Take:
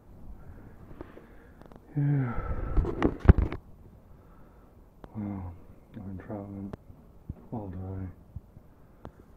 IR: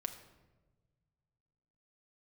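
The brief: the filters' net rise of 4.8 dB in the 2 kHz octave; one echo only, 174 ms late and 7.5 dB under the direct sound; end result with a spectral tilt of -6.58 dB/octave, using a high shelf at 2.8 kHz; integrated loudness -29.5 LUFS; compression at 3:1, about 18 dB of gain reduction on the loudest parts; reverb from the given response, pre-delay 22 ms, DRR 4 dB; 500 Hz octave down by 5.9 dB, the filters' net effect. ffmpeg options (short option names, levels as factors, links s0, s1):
-filter_complex "[0:a]equalizer=f=500:t=o:g=-9,equalizer=f=2000:t=o:g=4,highshelf=f=2800:g=7.5,acompressor=threshold=0.0178:ratio=3,aecho=1:1:174:0.422,asplit=2[s0][s1];[1:a]atrim=start_sample=2205,adelay=22[s2];[s1][s2]afir=irnorm=-1:irlink=0,volume=0.708[s3];[s0][s3]amix=inputs=2:normalize=0,volume=3.16"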